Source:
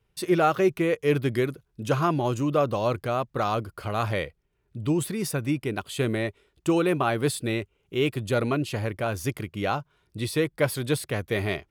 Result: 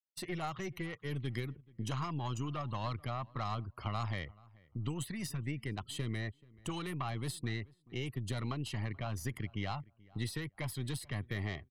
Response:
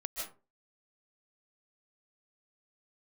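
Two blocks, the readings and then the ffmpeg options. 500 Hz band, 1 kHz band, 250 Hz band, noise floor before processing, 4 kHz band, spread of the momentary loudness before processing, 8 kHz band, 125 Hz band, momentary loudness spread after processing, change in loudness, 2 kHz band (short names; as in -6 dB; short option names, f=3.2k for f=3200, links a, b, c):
-20.5 dB, -13.0 dB, -14.0 dB, -72 dBFS, -9.0 dB, 8 LU, -10.5 dB, -7.5 dB, 4 LU, -13.0 dB, -12.0 dB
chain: -filter_complex "[0:a]afftfilt=real='re*gte(hypot(re,im),0.00631)':imag='im*gte(hypot(re,im),0.00631)':win_size=1024:overlap=0.75,aecho=1:1:1:0.65,acrossover=split=130|1300|4300[a][b][c][d];[a]acompressor=threshold=-34dB:ratio=4[e];[b]acompressor=threshold=-36dB:ratio=4[f];[c]acompressor=threshold=-39dB:ratio=4[g];[d]acompressor=threshold=-41dB:ratio=4[h];[e][f][g][h]amix=inputs=4:normalize=0,aeval=exprs='(tanh(12.6*val(0)+0.7)-tanh(0.7))/12.6':c=same,asplit=2[i][j];[j]adelay=432,lowpass=f=1.8k:p=1,volume=-23.5dB,asplit=2[k][l];[l]adelay=432,lowpass=f=1.8k:p=1,volume=0.21[m];[k][m]amix=inputs=2:normalize=0[n];[i][n]amix=inputs=2:normalize=0,volume=-2dB"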